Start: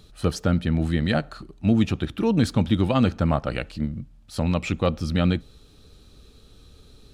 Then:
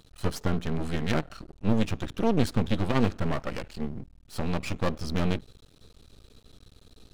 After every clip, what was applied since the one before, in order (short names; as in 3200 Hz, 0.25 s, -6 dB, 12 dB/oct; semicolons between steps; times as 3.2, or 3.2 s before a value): half-wave rectifier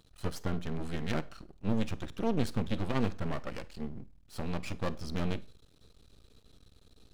Schroeder reverb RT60 0.31 s, combs from 31 ms, DRR 18 dB; gain -6.5 dB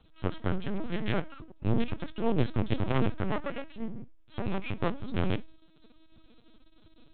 LPC vocoder at 8 kHz pitch kept; gain +3.5 dB